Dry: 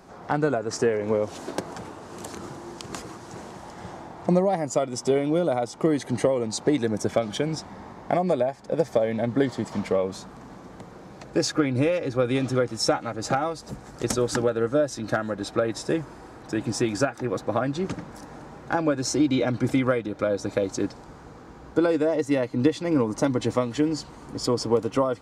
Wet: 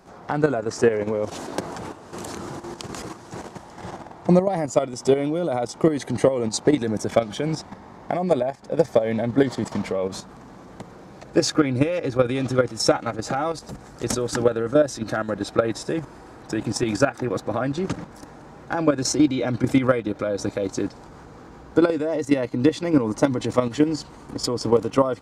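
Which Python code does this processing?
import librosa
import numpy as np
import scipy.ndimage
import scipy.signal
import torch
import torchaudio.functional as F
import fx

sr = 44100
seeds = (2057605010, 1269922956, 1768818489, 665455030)

y = fx.level_steps(x, sr, step_db=10)
y = y * 10.0 ** (6.5 / 20.0)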